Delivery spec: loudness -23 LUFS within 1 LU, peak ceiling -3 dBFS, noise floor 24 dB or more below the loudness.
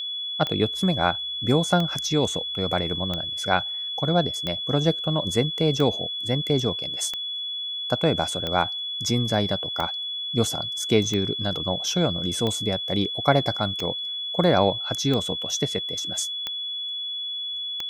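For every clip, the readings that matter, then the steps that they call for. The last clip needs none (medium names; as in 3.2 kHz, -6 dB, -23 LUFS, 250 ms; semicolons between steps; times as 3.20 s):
clicks found 14; steady tone 3.4 kHz; tone level -28 dBFS; loudness -24.0 LUFS; peak level -3.0 dBFS; loudness target -23.0 LUFS
-> de-click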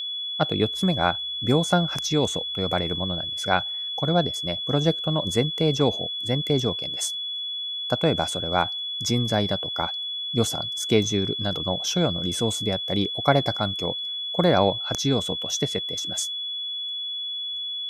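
clicks found 0; steady tone 3.4 kHz; tone level -28 dBFS
-> band-stop 3.4 kHz, Q 30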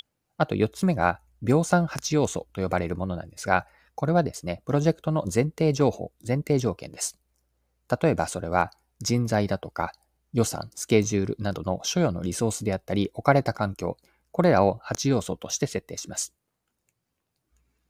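steady tone not found; loudness -26.0 LUFS; peak level -3.5 dBFS; loudness target -23.0 LUFS
-> trim +3 dB; peak limiter -3 dBFS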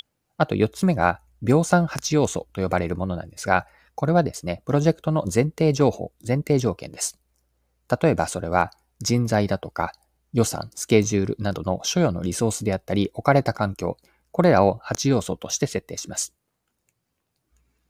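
loudness -23.0 LUFS; peak level -3.0 dBFS; noise floor -76 dBFS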